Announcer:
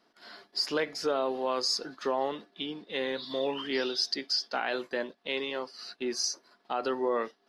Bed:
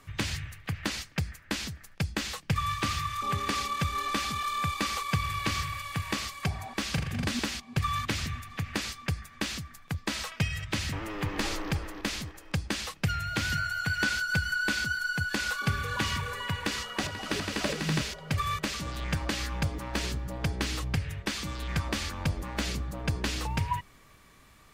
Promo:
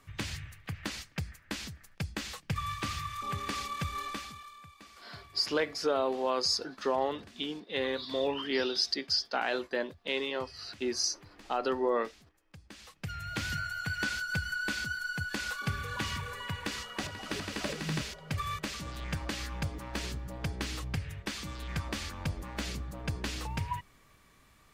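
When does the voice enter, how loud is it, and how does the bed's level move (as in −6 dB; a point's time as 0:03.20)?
4.80 s, 0.0 dB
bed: 0:04.03 −5.5 dB
0:04.67 −23.5 dB
0:12.52 −23.5 dB
0:13.31 −5 dB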